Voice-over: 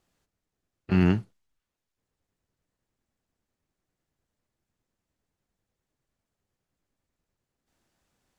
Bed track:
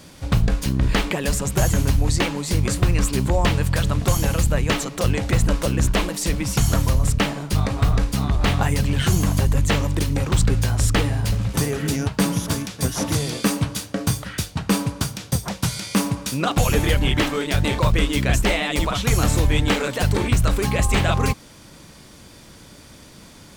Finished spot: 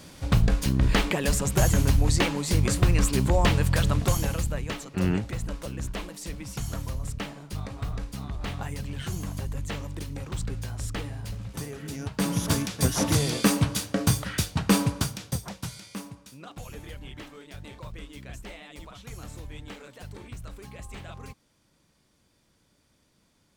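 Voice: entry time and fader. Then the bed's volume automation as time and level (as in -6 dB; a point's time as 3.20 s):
4.05 s, -4.5 dB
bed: 3.93 s -2.5 dB
4.84 s -14 dB
11.89 s -14 dB
12.50 s -1 dB
14.88 s -1 dB
16.31 s -22.5 dB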